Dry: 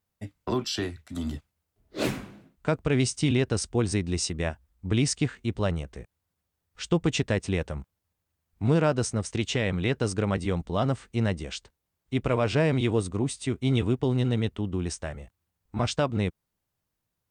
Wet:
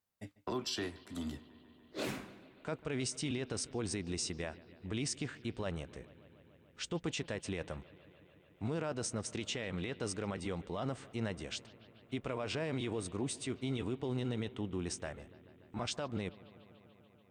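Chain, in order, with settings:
low-shelf EQ 160 Hz −10 dB
brickwall limiter −22.5 dBFS, peak gain reduction 10 dB
on a send: bucket-brigade delay 145 ms, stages 4,096, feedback 82%, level −21 dB
on the sum: level −5 dB

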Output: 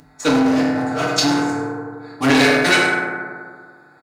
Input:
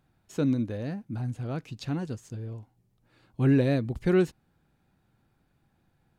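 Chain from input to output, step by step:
adaptive Wiener filter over 15 samples
single-tap delay 156 ms −13 dB
mains hum 50 Hz, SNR 13 dB
parametric band 400 Hz −8.5 dB 2 octaves
mains-hum notches 50/100/150/200/250 Hz
comb filter 6.7 ms, depth 57%
convolution reverb RT60 2.8 s, pre-delay 4 ms, DRR −9.5 dB
phase-vocoder stretch with locked phases 0.65×
mid-hump overdrive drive 25 dB, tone 6,100 Hz, clips at −2.5 dBFS
bass and treble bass −13 dB, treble +12 dB
level +1 dB

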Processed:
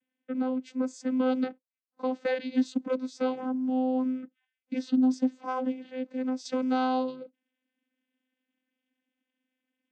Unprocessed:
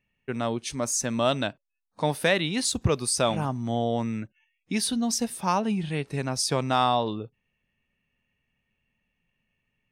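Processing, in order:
high-shelf EQ 4,700 Hz −8.5 dB, from 0:06.45 +5.5 dB
channel vocoder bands 16, saw 257 Hz
level −1 dB

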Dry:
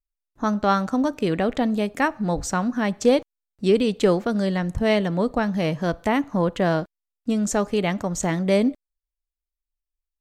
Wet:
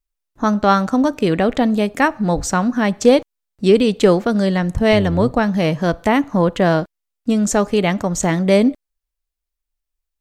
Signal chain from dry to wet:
0:04.91–0:05.35: sub-octave generator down 1 octave, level −5 dB
level +6 dB

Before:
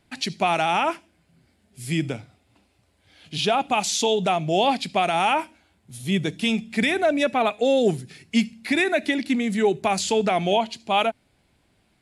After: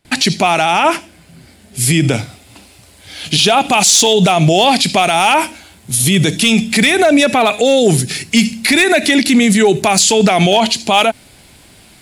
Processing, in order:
noise gate with hold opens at −56 dBFS
high-shelf EQ 3,800 Hz +6.5 dB, from 0:02.13 +12 dB
hard clipping −11 dBFS, distortion −23 dB
boost into a limiter +21 dB
level −2 dB

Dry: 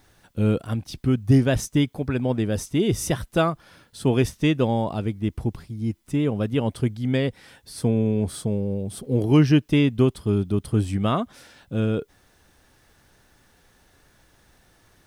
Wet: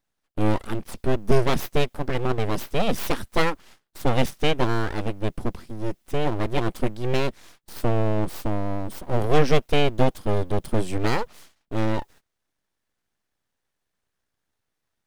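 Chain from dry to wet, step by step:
full-wave rectification
noise gate −47 dBFS, range −23 dB
level +2 dB

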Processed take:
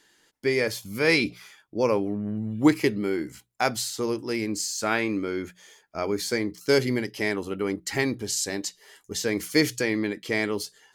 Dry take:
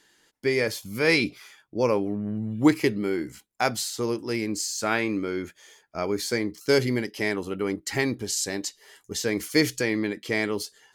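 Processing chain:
mains-hum notches 60/120/180 Hz

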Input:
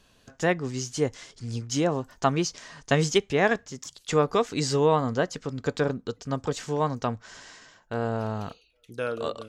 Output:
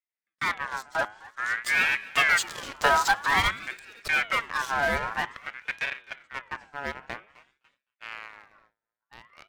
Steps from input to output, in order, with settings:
spectral magnitudes quantised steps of 15 dB
source passing by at 0:02.57, 11 m/s, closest 4.7 metres
low-pass filter 2,300 Hz 6 dB per octave
in parallel at −9.5 dB: fuzz pedal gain 42 dB, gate −46 dBFS
on the sum: hum removal 103.6 Hz, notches 21
on a send: repeating echo 257 ms, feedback 49%, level −21 dB
on the sum: noise gate with hold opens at −47 dBFS
ring modulator whose carrier an LFO sweeps 1,600 Hz, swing 30%, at 0.51 Hz
level +1.5 dB

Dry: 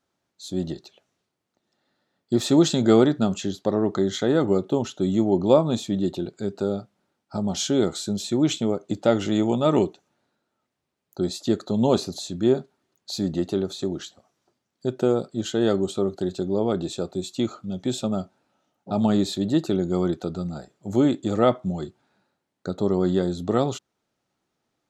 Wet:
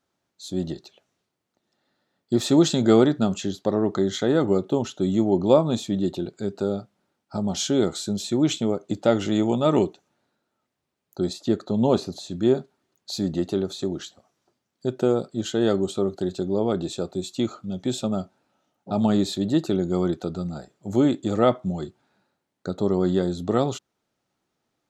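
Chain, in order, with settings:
0:11.33–0:12.31: high-shelf EQ 4,000 Hz −8 dB

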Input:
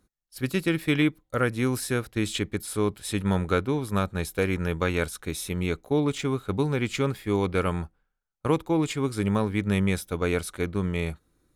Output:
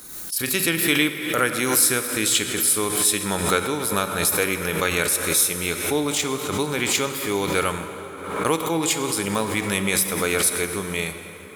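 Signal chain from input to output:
RIAA equalisation recording
dense smooth reverb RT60 4.2 s, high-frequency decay 0.6×, DRR 7 dB
background raised ahead of every attack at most 56 dB per second
level +4 dB

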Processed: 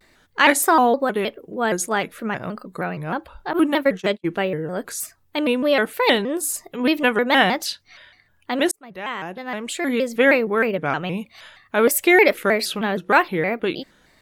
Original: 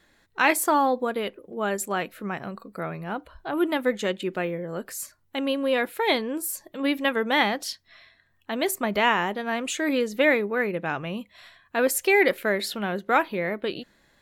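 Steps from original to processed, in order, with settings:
0:03.53–0:04.29: noise gate −28 dBFS, range −45 dB
0:08.71–0:10.45: fade in
pitch modulation by a square or saw wave square 3.2 Hz, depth 160 cents
level +5.5 dB

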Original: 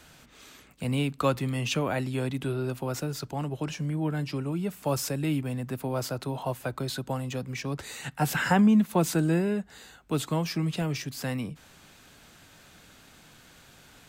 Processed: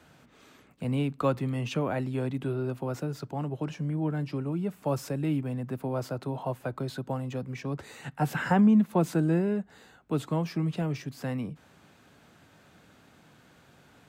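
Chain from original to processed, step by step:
high-pass filter 88 Hz
high-shelf EQ 2,200 Hz −12 dB

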